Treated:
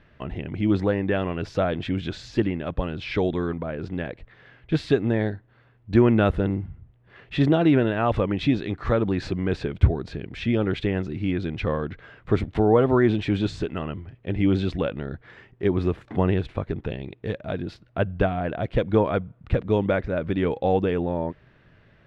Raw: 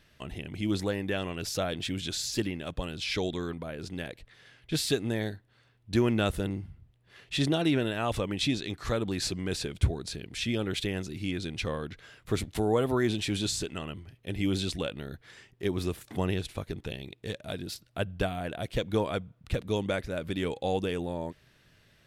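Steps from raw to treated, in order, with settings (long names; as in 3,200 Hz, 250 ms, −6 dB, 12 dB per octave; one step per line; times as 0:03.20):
low-pass filter 1,800 Hz 12 dB per octave
level +8 dB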